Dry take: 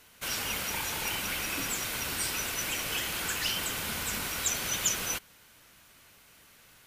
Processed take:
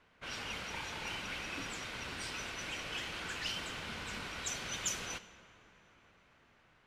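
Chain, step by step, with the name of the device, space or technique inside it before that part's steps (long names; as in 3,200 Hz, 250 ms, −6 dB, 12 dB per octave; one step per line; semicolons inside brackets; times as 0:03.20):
dense smooth reverb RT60 4.6 s, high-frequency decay 0.95×, DRR 13 dB
cassette deck with a dynamic noise filter (white noise bed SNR 24 dB; low-pass that shuts in the quiet parts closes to 2,000 Hz, open at −21 dBFS)
level −6.5 dB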